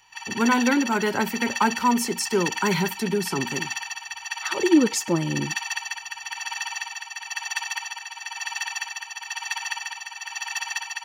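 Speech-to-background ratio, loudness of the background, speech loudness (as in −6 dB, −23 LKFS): 6.5 dB, −30.0 LKFS, −23.5 LKFS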